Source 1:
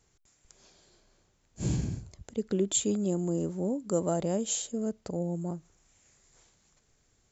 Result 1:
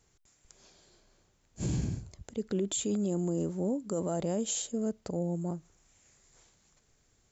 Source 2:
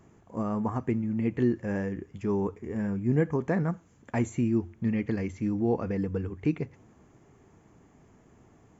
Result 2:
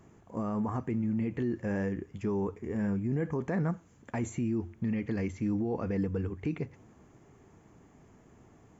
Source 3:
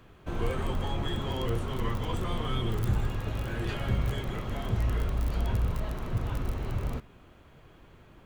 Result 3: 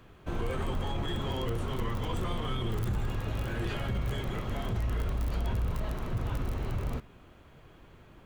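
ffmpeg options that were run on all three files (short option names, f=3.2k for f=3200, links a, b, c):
-af "alimiter=limit=-23.5dB:level=0:latency=1:release=22"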